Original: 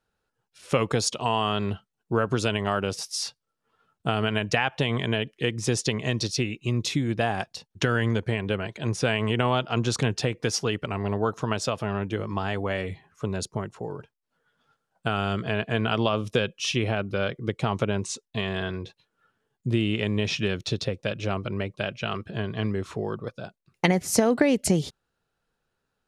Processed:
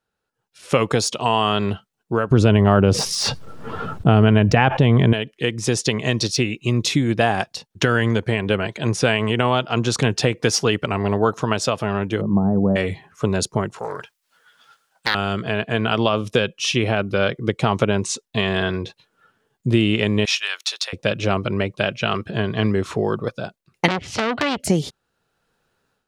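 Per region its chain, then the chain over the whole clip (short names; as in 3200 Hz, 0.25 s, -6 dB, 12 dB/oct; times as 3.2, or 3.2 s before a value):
2.31–5.13 tilt -3.5 dB/oct + fast leveller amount 70%
12.21–12.76 Gaussian blur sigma 11 samples + bell 190 Hz +11 dB 0.52 oct
13.78–15.15 tilt shelf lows -10 dB, about 740 Hz + Doppler distortion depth 0.79 ms
20.25–20.93 HPF 910 Hz 24 dB/oct + high shelf 10000 Hz +11 dB
23.88–24.6 synth low-pass 3100 Hz, resonance Q 3.8 + resonant low shelf 140 Hz +9 dB, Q 1.5 + core saturation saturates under 3000 Hz
whole clip: de-esser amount 45%; low shelf 65 Hz -8.5 dB; AGC gain up to 11.5 dB; gain -1 dB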